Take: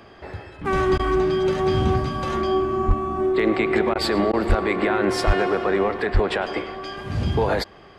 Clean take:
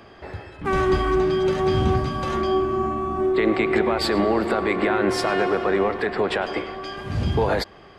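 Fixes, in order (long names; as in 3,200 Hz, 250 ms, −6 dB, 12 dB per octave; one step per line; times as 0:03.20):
clipped peaks rebuilt −10 dBFS
high-pass at the plosives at 0:02.87/0:04.48/0:05.26/0:06.13
repair the gap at 0:00.98/0:03.94/0:04.32, 12 ms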